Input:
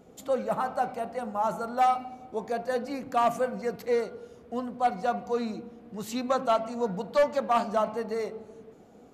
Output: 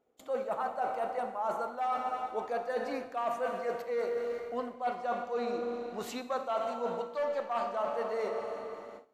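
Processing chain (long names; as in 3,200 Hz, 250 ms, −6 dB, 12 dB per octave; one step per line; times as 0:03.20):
bass and treble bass −10 dB, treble −8 dB
four-comb reverb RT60 3 s, combs from 26 ms, DRR 7 dB
noise gate with hold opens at −39 dBFS
reversed playback
downward compressor 10 to 1, threshold −33 dBFS, peak gain reduction 15 dB
reversed playback
parametric band 170 Hz −7 dB 0.77 octaves
level +3.5 dB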